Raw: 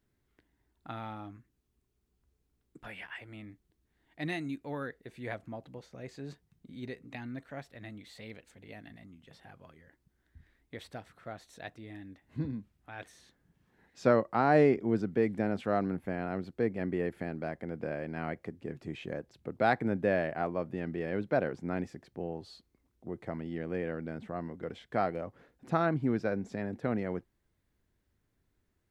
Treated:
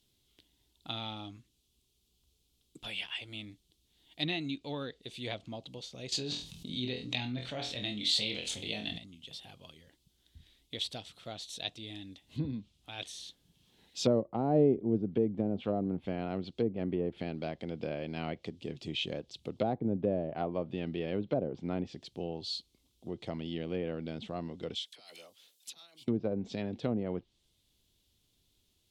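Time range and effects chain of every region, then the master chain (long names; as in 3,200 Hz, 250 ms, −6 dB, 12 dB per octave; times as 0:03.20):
0:06.12–0:08.98: flutter between parallel walls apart 4.1 metres, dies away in 0.25 s + envelope flattener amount 50%
0:24.75–0:26.08: compressor whose output falls as the input rises −34 dBFS, ratio −0.5 + first difference + all-pass dispersion lows, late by 46 ms, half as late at 1,000 Hz
whole clip: treble cut that deepens with the level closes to 570 Hz, closed at −26 dBFS; high shelf with overshoot 2,400 Hz +11.5 dB, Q 3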